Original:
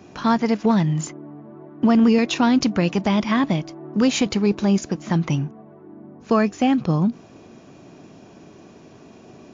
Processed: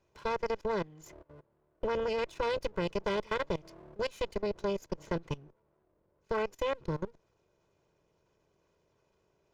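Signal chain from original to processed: comb filter that takes the minimum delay 2 ms; level held to a coarse grid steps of 21 dB; valve stage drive 17 dB, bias 0.8; trim -5.5 dB

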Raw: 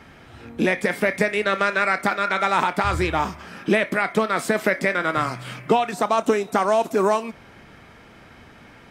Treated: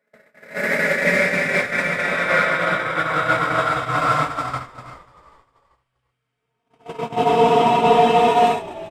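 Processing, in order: Paulstretch 7.1×, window 0.50 s, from 4.64 s; level rider gain up to 7 dB; gate -15 dBFS, range -52 dB; peaking EQ 340 Hz -12.5 dB 0.3 oct; in parallel at -9 dB: overload inside the chain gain 17.5 dB; on the sum: comb of notches 200 Hz; on a send: frequency-shifting echo 391 ms, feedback 39%, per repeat -63 Hz, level -19 dB

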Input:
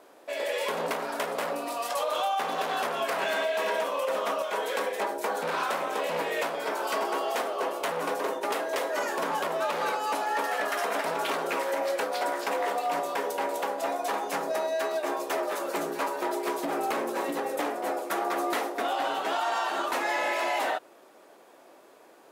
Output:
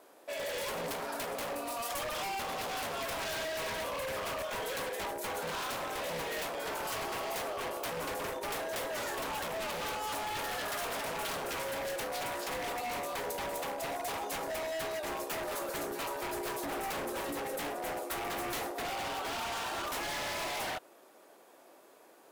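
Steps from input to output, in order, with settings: wavefolder -27.5 dBFS; treble shelf 8.2 kHz +8 dB; trim -4.5 dB

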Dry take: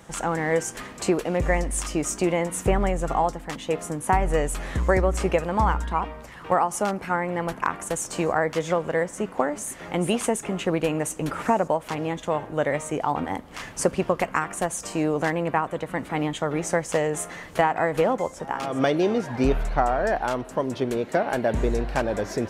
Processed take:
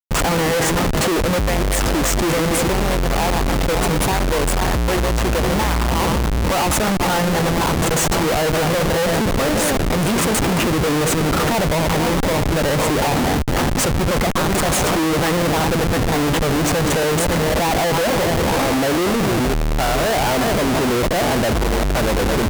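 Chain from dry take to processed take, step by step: backward echo that repeats 274 ms, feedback 52%, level -10 dB; Schmitt trigger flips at -32 dBFS; vibrato 0.35 Hz 57 cents; trim +7 dB

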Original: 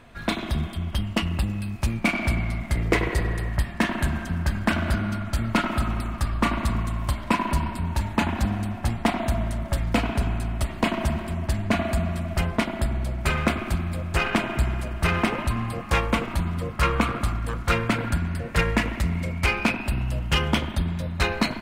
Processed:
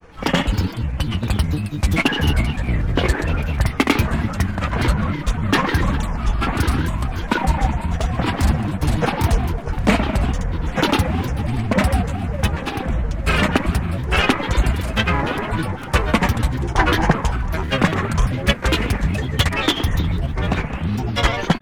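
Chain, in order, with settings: granulator 100 ms, grains 20 per s, pitch spread up and down by 7 st; trim +7 dB

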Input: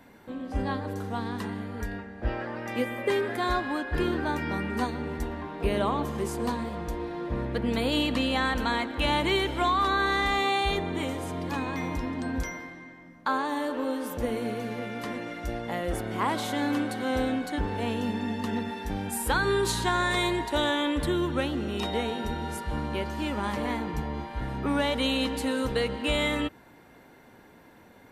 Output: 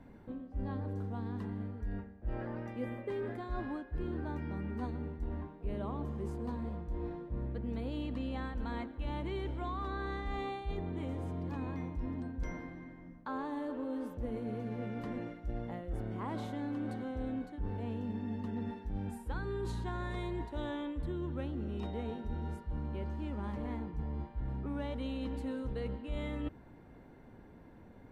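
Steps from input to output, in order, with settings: tilt EQ -3.5 dB/octave; reverse; compression 5:1, threshold -28 dBFS, peak gain reduction 17 dB; reverse; trim -7.5 dB

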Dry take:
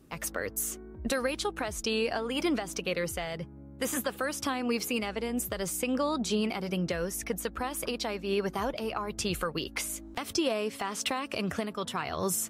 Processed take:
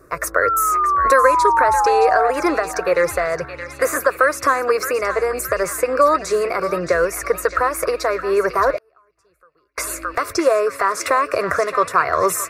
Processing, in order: static phaser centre 840 Hz, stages 6; in parallel at -2.5 dB: gain riding within 3 dB; 0.42–2.31 s: on the sum: painted sound fall 700–1400 Hz -34 dBFS; peaking EQ 980 Hz +14.5 dB 2.1 oct; on a send: band-passed feedback delay 620 ms, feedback 69%, band-pass 2.9 kHz, level -7.5 dB; 8.77–9.78 s: on the sum: inverted gate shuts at -28 dBFS, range -39 dB; trim +3.5 dB

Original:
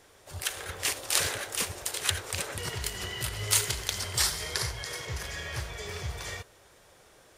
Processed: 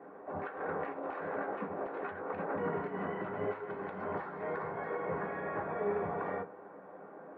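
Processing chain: high-pass 170 Hz 24 dB/octave; reverberation RT60 0.20 s, pre-delay 3 ms, DRR -0.5 dB; compression 16:1, threshold -32 dBFS, peak gain reduction 16 dB; low-pass 1.1 kHz 24 dB/octave; trim +8.5 dB

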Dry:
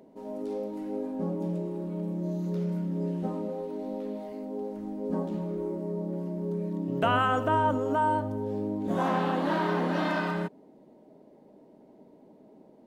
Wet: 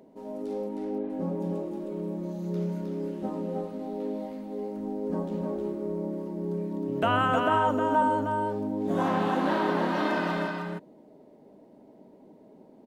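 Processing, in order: 0.67–1.10 s: low-pass 3.2 kHz 24 dB/octave; on a send: delay 312 ms -4 dB

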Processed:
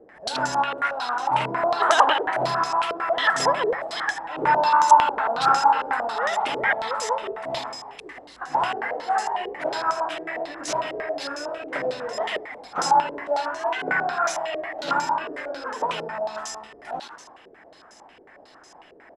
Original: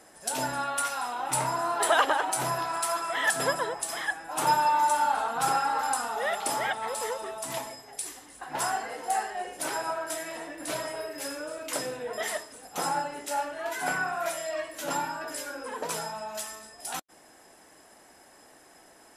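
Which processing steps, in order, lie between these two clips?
frequency-shifting echo 82 ms, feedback 59%, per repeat +74 Hz, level -11 dB; step-sequenced low-pass 11 Hz 440–6100 Hz; trim +2 dB

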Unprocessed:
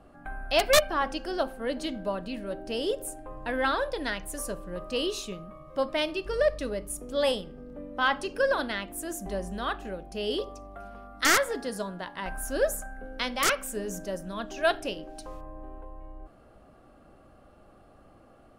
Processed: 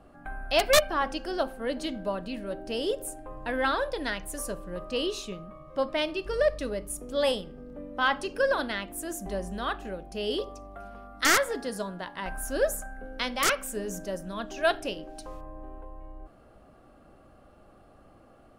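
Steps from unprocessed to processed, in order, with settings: 4.84–6.19 s: treble shelf 8.1 kHz -6.5 dB

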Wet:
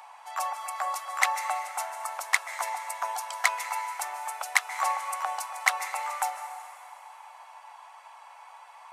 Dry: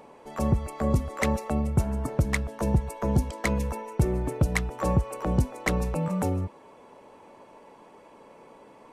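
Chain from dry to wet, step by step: Chebyshev high-pass 740 Hz, order 5; plate-style reverb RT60 2.9 s, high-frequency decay 0.9×, pre-delay 120 ms, DRR 10.5 dB; trim +6.5 dB

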